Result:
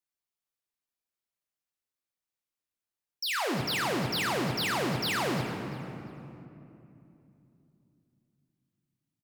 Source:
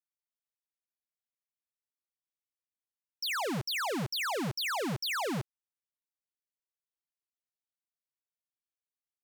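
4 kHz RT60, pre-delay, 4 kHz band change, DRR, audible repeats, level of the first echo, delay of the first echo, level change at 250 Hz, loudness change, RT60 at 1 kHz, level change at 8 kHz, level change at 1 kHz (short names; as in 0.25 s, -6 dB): 1.9 s, 3 ms, +2.5 dB, 2.5 dB, 2, -16.5 dB, 0.346 s, +4.0 dB, +2.5 dB, 2.7 s, +2.5 dB, +3.5 dB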